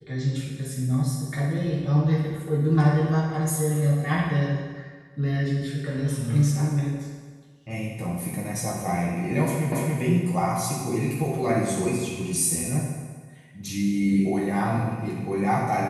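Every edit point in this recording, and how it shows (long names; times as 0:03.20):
0:09.72: the same again, the last 0.28 s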